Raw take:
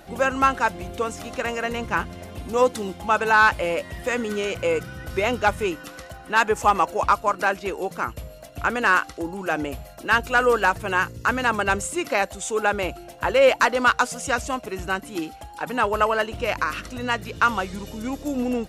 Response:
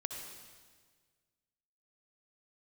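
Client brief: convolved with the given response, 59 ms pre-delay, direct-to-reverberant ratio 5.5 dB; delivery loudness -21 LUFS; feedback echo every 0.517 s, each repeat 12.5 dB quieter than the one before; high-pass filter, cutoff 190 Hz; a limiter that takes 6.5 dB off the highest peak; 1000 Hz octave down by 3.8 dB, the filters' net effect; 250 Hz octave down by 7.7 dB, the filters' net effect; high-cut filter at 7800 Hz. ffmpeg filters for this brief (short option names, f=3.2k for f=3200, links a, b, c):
-filter_complex "[0:a]highpass=190,lowpass=7.8k,equalizer=f=250:t=o:g=-8,equalizer=f=1k:t=o:g=-4.5,alimiter=limit=-13dB:level=0:latency=1,aecho=1:1:517|1034|1551:0.237|0.0569|0.0137,asplit=2[a][b];[1:a]atrim=start_sample=2205,adelay=59[c];[b][c]afir=irnorm=-1:irlink=0,volume=-5.5dB[d];[a][d]amix=inputs=2:normalize=0,volume=5.5dB"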